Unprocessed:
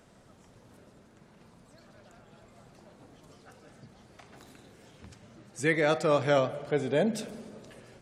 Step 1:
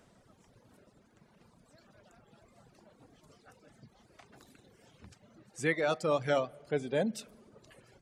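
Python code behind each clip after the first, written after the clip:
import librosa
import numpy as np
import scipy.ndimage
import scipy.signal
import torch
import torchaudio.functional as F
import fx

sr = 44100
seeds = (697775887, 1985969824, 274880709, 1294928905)

y = fx.dereverb_blind(x, sr, rt60_s=1.1)
y = F.gain(torch.from_numpy(y), -3.5).numpy()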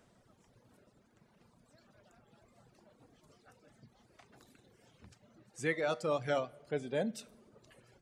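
y = fx.comb_fb(x, sr, f0_hz=120.0, decay_s=0.41, harmonics='all', damping=0.0, mix_pct=40)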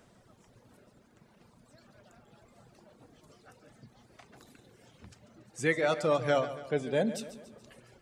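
y = fx.echo_feedback(x, sr, ms=142, feedback_pct=49, wet_db=-13.5)
y = F.gain(torch.from_numpy(y), 5.5).numpy()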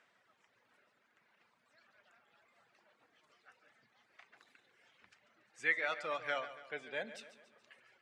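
y = fx.bandpass_q(x, sr, hz=2000.0, q=1.5)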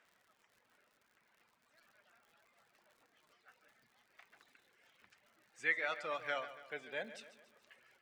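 y = fx.dmg_crackle(x, sr, seeds[0], per_s=110.0, level_db=-56.0)
y = F.gain(torch.from_numpy(y), -1.5).numpy()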